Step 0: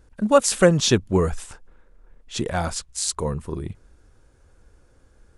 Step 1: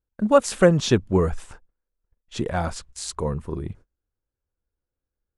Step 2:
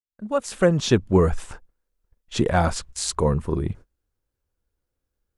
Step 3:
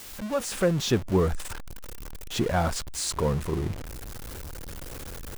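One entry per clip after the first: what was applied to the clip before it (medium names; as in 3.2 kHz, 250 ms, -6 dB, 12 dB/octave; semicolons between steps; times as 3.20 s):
gate -42 dBFS, range -30 dB; treble shelf 3.4 kHz -9.5 dB
fade-in on the opening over 1.65 s; trim +5.5 dB
jump at every zero crossing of -24.5 dBFS; trim -6.5 dB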